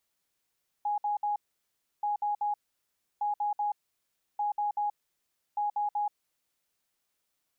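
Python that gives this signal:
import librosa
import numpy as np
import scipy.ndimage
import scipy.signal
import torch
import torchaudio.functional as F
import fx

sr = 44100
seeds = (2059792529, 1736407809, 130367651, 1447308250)

y = fx.beep_pattern(sr, wave='sine', hz=829.0, on_s=0.13, off_s=0.06, beeps=3, pause_s=0.67, groups=5, level_db=-26.5)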